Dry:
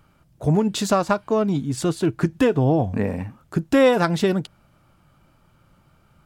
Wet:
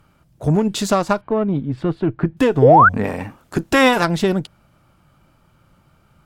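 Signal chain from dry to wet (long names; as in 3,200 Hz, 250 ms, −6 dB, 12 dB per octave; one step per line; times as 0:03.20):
0:03.03–0:04.03: ceiling on every frequency bin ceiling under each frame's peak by 13 dB
harmonic generator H 8 −29 dB, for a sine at −4.5 dBFS
0:01.21–0:02.37: high-frequency loss of the air 420 metres
0:02.62–0:02.89: sound drawn into the spectrogram rise 400–1,600 Hz −11 dBFS
level +2 dB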